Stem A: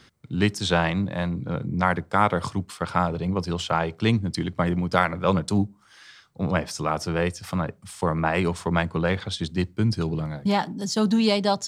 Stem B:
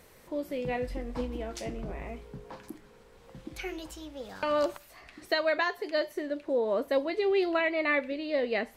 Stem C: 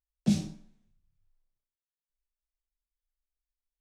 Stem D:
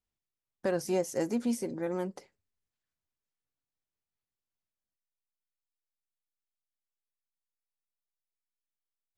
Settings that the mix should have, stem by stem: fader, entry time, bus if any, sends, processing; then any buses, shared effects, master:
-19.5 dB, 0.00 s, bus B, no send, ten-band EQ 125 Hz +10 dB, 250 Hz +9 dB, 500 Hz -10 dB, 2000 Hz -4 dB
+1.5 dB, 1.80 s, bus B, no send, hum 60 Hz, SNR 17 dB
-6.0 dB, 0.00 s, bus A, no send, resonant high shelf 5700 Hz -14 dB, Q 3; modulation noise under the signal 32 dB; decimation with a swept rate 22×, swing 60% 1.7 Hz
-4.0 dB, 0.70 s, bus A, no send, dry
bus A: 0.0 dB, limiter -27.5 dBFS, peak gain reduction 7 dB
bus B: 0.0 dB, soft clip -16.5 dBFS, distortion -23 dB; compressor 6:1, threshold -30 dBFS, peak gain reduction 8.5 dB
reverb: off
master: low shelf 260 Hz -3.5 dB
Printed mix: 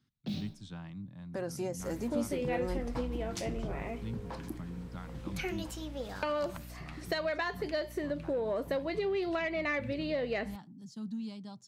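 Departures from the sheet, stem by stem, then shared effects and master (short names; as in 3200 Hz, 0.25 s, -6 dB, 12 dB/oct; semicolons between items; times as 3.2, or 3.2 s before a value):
stem A -19.5 dB -> -26.5 dB; stem C: missing decimation with a swept rate 22×, swing 60% 1.7 Hz; master: missing low shelf 260 Hz -3.5 dB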